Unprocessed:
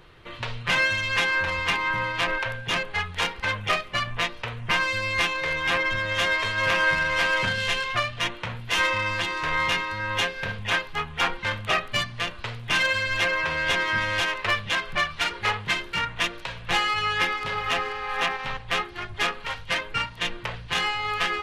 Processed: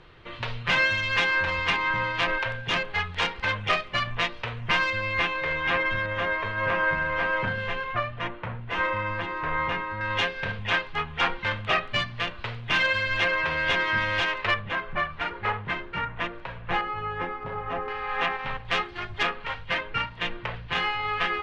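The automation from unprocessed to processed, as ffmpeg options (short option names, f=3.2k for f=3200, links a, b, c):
-af "asetnsamples=n=441:p=0,asendcmd='4.9 lowpass f 2700;6.06 lowpass f 1600;10.01 lowpass f 3800;14.54 lowpass f 1700;16.81 lowpass f 1000;17.88 lowpass f 2700;18.65 lowpass f 4800;19.23 lowpass f 2900',lowpass=4.8k"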